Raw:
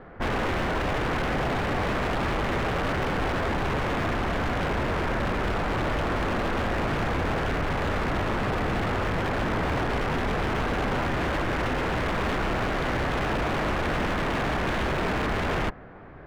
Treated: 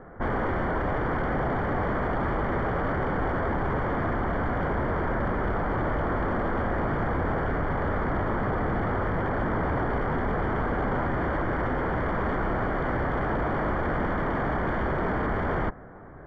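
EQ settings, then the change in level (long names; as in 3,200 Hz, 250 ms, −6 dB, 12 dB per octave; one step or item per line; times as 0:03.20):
Savitzky-Golay smoothing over 41 samples
0.0 dB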